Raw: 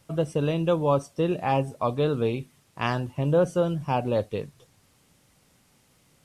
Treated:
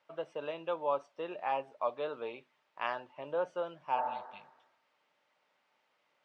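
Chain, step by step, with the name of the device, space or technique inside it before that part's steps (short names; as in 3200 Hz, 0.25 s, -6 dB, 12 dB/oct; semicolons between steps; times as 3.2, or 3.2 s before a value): tin-can telephone (BPF 690–2900 Hz; small resonant body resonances 600/900 Hz, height 8 dB, ringing for 95 ms); spectral repair 4–4.79, 250–2000 Hz both; high shelf 8200 Hz -9.5 dB; gain -6 dB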